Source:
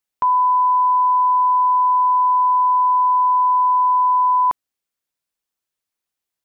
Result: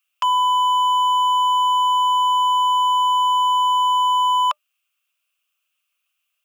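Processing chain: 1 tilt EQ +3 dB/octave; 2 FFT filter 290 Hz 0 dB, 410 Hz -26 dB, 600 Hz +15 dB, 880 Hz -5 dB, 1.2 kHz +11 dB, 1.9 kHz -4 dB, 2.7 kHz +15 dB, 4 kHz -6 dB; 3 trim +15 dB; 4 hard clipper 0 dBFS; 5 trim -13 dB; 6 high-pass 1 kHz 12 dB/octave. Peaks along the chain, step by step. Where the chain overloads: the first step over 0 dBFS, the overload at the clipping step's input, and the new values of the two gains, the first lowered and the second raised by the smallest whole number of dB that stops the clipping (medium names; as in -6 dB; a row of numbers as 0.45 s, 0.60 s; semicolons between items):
-12.0 dBFS, -7.5 dBFS, +7.5 dBFS, 0.0 dBFS, -13.0 dBFS, -10.0 dBFS; step 3, 7.5 dB; step 3 +7 dB, step 5 -5 dB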